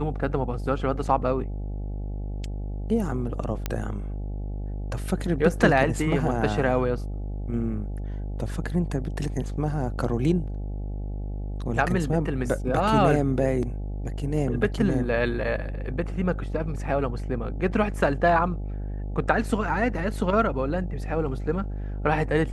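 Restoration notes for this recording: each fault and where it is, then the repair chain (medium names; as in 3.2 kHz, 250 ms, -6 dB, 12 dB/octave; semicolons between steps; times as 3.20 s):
buzz 50 Hz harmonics 17 -31 dBFS
3.66 s: pop -12 dBFS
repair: de-click; de-hum 50 Hz, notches 17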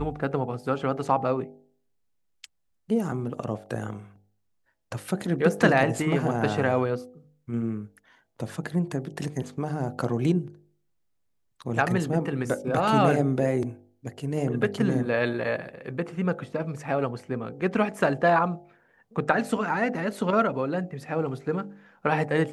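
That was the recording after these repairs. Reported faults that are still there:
3.66 s: pop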